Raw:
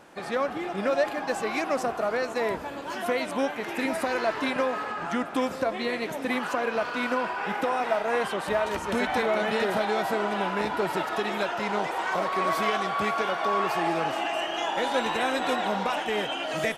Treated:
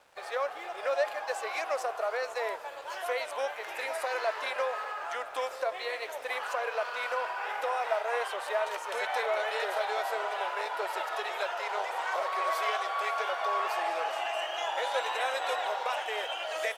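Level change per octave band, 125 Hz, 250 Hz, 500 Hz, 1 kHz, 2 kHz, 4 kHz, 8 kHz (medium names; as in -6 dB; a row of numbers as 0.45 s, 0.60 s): under -30 dB, under -25 dB, -5.5 dB, -4.0 dB, -4.0 dB, -4.0 dB, -3.5 dB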